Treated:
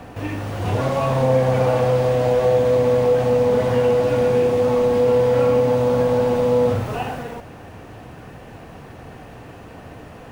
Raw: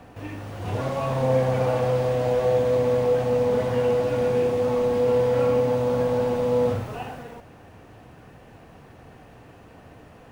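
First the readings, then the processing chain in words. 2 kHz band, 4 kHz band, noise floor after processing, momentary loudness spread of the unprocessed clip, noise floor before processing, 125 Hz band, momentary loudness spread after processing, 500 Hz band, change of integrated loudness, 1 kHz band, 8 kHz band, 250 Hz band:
+5.5 dB, +5.0 dB, -40 dBFS, 13 LU, -49 dBFS, +5.0 dB, 10 LU, +4.5 dB, +4.5 dB, +5.0 dB, no reading, +5.0 dB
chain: compression 1.5:1, threshold -29 dBFS, peak gain reduction 5 dB; trim +8.5 dB

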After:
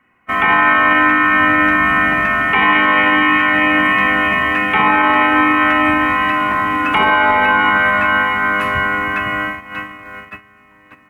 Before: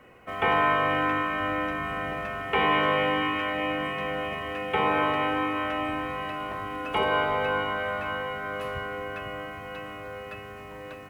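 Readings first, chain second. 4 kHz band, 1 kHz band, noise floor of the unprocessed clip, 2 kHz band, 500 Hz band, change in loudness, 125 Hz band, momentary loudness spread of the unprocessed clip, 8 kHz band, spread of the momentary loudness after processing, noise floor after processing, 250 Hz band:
+10.5 dB, +13.5 dB, -42 dBFS, +17.5 dB, +5.5 dB, +14.5 dB, +8.0 dB, 15 LU, no reading, 7 LU, -48 dBFS, +14.0 dB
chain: hum notches 50/100/150 Hz; on a send: feedback echo behind a band-pass 77 ms, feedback 62%, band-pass 640 Hz, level -6.5 dB; on the sum: gate -36 dBFS, range -22 dB; graphic EQ 250/500/1000/2000/4000 Hz +8/-12/+6/+9/-4 dB; loudness maximiser +15.5 dB; trim -3 dB

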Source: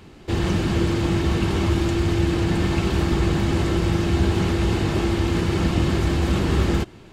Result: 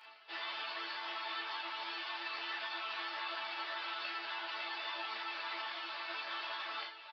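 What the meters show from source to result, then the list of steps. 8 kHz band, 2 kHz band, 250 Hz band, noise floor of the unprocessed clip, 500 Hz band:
under -30 dB, -8.0 dB, -37.5 dB, -45 dBFS, -26.0 dB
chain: high-pass 780 Hz 24 dB/octave; reverse; upward compressor, threshold -35 dBFS; reverse; peak limiter -24 dBFS, peak gain reduction 5.5 dB; chord resonator A3 sus4, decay 0.28 s; resampled via 11.025 kHz; doubling 36 ms -4 dB; three-phase chorus; trim +11 dB

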